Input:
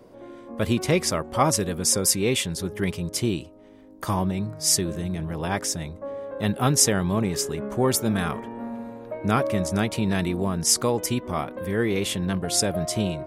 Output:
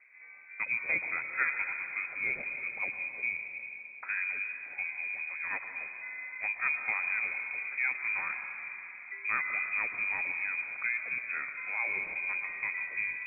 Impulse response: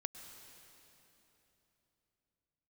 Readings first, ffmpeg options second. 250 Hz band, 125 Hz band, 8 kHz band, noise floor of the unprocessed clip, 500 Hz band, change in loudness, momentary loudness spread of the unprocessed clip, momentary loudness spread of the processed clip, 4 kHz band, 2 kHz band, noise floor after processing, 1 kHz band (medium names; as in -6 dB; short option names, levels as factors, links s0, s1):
under -30 dB, under -35 dB, under -40 dB, -48 dBFS, -27.5 dB, -8.5 dB, 12 LU, 9 LU, under -40 dB, +5.5 dB, -48 dBFS, -13.5 dB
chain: -filter_complex "[1:a]atrim=start_sample=2205[s0];[0:a][s0]afir=irnorm=-1:irlink=0,lowpass=f=2200:t=q:w=0.5098,lowpass=f=2200:t=q:w=0.6013,lowpass=f=2200:t=q:w=0.9,lowpass=f=2200:t=q:w=2.563,afreqshift=-2600,volume=0.447"